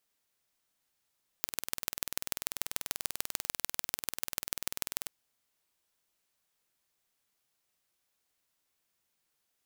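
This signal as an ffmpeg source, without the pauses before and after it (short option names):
-f lavfi -i "aevalsrc='0.75*eq(mod(n,2162),0)*(0.5+0.5*eq(mod(n,6486),0))':d=3.64:s=44100"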